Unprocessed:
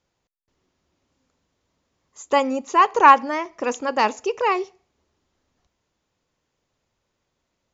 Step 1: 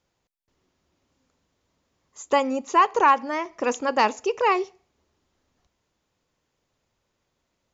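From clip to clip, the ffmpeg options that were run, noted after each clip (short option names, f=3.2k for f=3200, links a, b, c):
-af "alimiter=limit=-8.5dB:level=0:latency=1:release=419"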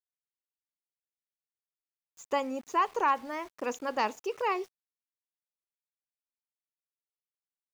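-af "aeval=exprs='val(0)*gte(abs(val(0)),0.00944)':c=same,volume=-9dB"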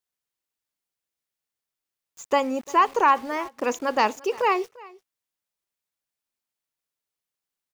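-af "aecho=1:1:346:0.075,volume=8dB"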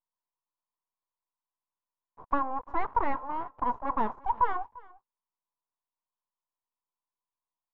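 -af "aeval=exprs='abs(val(0))':c=same,lowpass=f=1k:t=q:w=8.5,volume=-8.5dB"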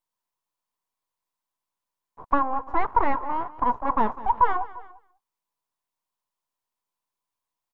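-af "aecho=1:1:199:0.126,volume=6dB"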